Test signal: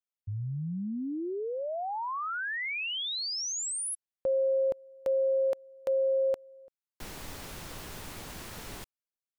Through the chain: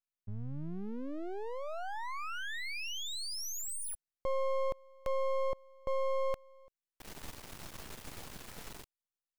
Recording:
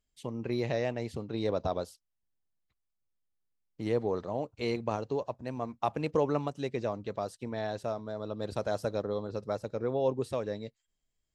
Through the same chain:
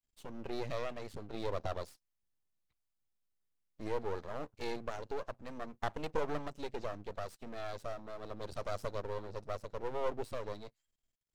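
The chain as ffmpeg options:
-af "aeval=exprs='max(val(0),0)':c=same,volume=0.841"

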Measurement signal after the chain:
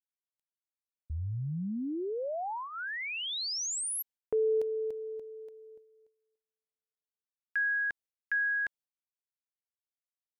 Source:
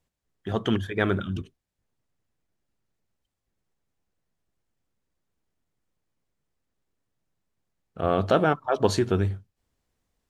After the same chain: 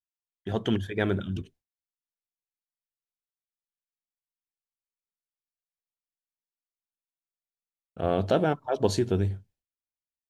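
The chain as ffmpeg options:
-af "equalizer=f=1200:w=5.1:g=-9,agate=range=0.0224:threshold=0.00316:ratio=3:detection=peak,adynamicequalizer=threshold=0.0112:dfrequency=1600:dqfactor=0.77:tfrequency=1600:tqfactor=0.77:attack=5:release=100:ratio=0.375:range=3:mode=cutabove:tftype=bell,volume=0.841"

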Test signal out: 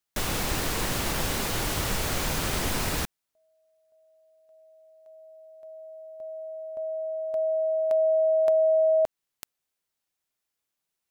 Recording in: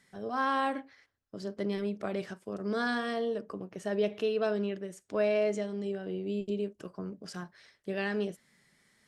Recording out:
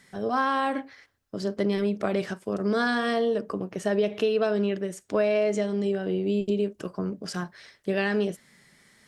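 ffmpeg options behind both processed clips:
-af "acompressor=threshold=0.0355:ratio=6,volume=2.82"

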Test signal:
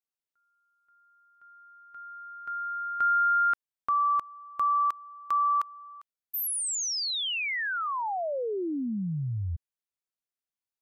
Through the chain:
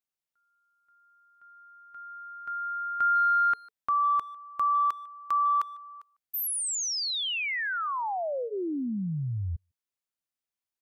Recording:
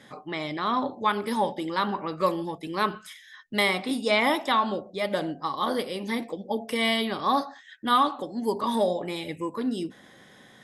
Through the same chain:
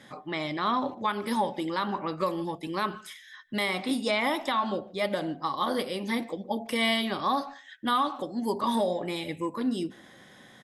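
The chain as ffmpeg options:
-filter_complex "[0:a]bandreject=f=440:w=12,alimiter=limit=0.141:level=0:latency=1:release=176,asplit=2[s0][s1];[s1]adelay=150,highpass=300,lowpass=3400,asoftclip=type=hard:threshold=0.0562,volume=0.0708[s2];[s0][s2]amix=inputs=2:normalize=0"

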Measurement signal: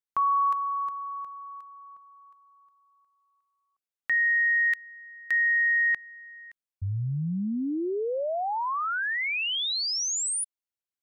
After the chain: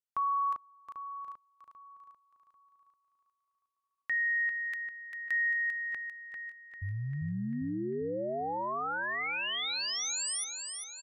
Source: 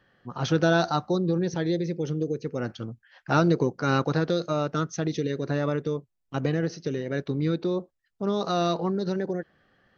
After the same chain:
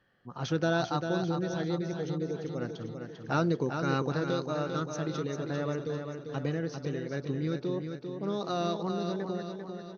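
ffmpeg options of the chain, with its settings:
-af "aecho=1:1:396|792|1188|1584|1980|2376|2772:0.473|0.251|0.133|0.0704|0.0373|0.0198|0.0105,aresample=32000,aresample=44100,volume=0.473"

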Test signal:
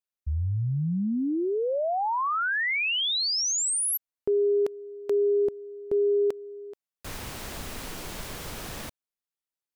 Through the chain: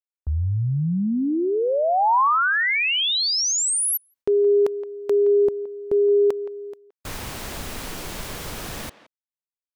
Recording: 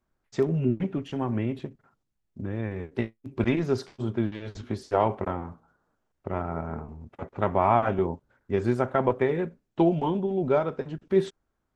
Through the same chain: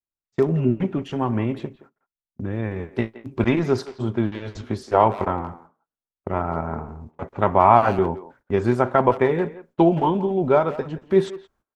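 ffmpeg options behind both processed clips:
-filter_complex "[0:a]agate=range=0.0355:threshold=0.00891:ratio=16:release=283:detection=rms,adynamicequalizer=threshold=0.01:dfrequency=990:dqfactor=1.5:tfrequency=990:tqfactor=1.5:attack=5:release=100:ratio=0.375:range=2.5:mode=boostabove:tftype=bell,asplit=2[s0][s1];[s1]adelay=170,highpass=300,lowpass=3400,asoftclip=type=hard:threshold=0.133,volume=0.178[s2];[s0][s2]amix=inputs=2:normalize=0,volume=1.68"

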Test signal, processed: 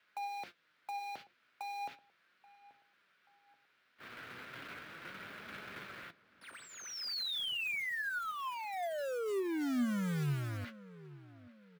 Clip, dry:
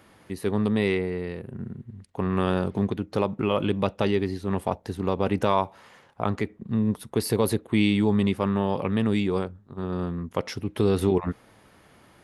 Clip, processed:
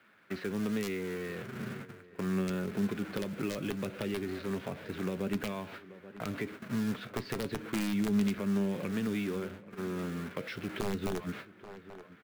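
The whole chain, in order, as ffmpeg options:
-filter_complex "[0:a]aeval=exprs='val(0)+0.5*0.0316*sgn(val(0))':c=same,agate=range=0.0631:threshold=0.0251:ratio=16:detection=peak,equalizer=f=1600:t=o:w=0.67:g=7.5,acrossover=split=740|2100[s0][s1][s2];[s1]acompressor=threshold=0.00708:ratio=6[s3];[s0][s3][s2]amix=inputs=3:normalize=0,highpass=150,equalizer=f=820:t=q:w=4:g=-5,equalizer=f=1400:t=q:w=4:g=6,equalizer=f=2300:t=q:w=4:g=5,lowpass=f=4000:w=0.5412,lowpass=f=4000:w=1.3066,aeval=exprs='(mod(4.47*val(0)+1,2)-1)/4.47':c=same,acrusher=bits=4:mode=log:mix=0:aa=0.000001,flanger=delay=4.7:depth=3.5:regen=72:speed=0.36:shape=sinusoidal,asplit=2[s4][s5];[s5]adelay=832,lowpass=f=1800:p=1,volume=0.112,asplit=2[s6][s7];[s7]adelay=832,lowpass=f=1800:p=1,volume=0.41,asplit=2[s8][s9];[s9]adelay=832,lowpass=f=1800:p=1,volume=0.41[s10];[s6][s8][s10]amix=inputs=3:normalize=0[s11];[s4][s11]amix=inputs=2:normalize=0,acrossover=split=280[s12][s13];[s13]acompressor=threshold=0.0224:ratio=6[s14];[s12][s14]amix=inputs=2:normalize=0,volume=0.708"

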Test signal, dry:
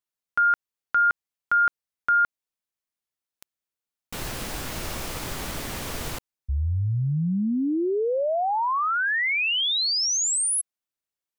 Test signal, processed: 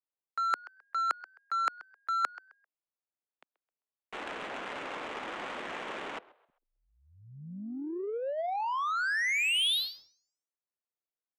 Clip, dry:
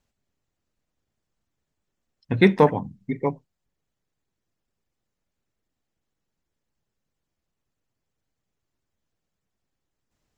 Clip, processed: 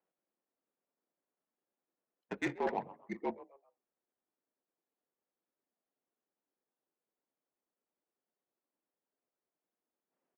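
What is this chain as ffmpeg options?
-filter_complex "[0:a]highpass=f=280:t=q:w=0.5412,highpass=f=280:t=q:w=1.307,lowpass=f=3500:t=q:w=0.5176,lowpass=f=3500:t=q:w=0.7071,lowpass=f=3500:t=q:w=1.932,afreqshift=-59,areverse,acompressor=threshold=0.0251:ratio=5:attack=17:release=160:knee=6:detection=peak,areverse,aemphasis=mode=production:type=riaa,asplit=4[s0][s1][s2][s3];[s1]adelay=131,afreqshift=92,volume=0.168[s4];[s2]adelay=262,afreqshift=184,volume=0.0638[s5];[s3]adelay=393,afreqshift=276,volume=0.0243[s6];[s0][s4][s5][s6]amix=inputs=4:normalize=0,adynamicsmooth=sensitivity=3.5:basefreq=930,volume=1.12"

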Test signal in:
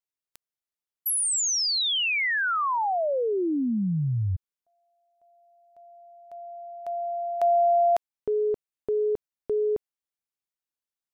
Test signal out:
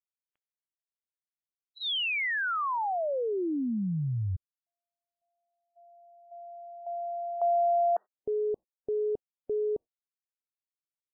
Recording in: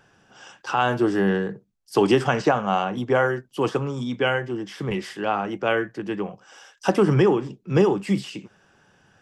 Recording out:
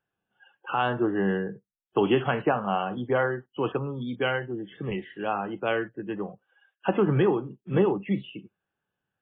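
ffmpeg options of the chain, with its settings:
-af "afftdn=nr=22:nf=-37,volume=0.631" -ar 8000 -c:a libmp3lame -b:a 16k

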